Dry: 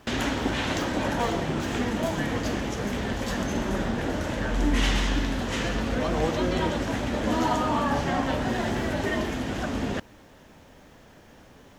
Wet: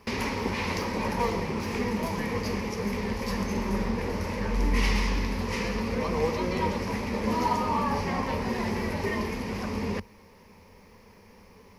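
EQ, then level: rippled EQ curve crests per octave 0.86, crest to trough 12 dB; -3.5 dB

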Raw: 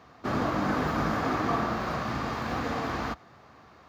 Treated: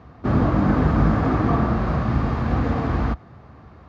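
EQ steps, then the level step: RIAA curve playback; +3.0 dB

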